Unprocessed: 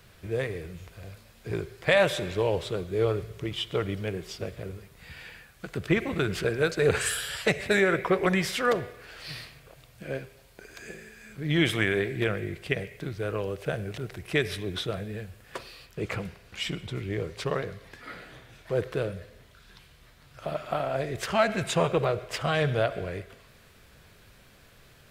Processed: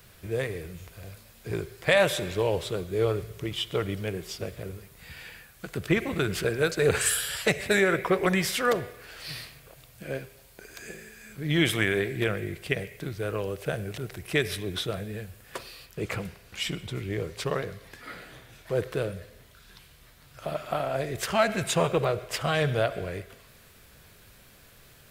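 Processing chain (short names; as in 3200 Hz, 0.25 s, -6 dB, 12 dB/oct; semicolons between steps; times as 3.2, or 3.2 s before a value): high shelf 8300 Hz +10.5 dB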